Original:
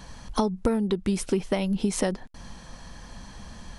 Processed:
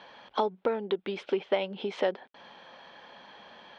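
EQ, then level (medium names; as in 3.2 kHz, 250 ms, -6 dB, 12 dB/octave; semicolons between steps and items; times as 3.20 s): cabinet simulation 390–3700 Hz, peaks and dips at 400 Hz +5 dB, 570 Hz +6 dB, 830 Hz +5 dB, 1.5 kHz +4 dB, 2.3 kHz +4 dB, 3.3 kHz +7 dB; -4.0 dB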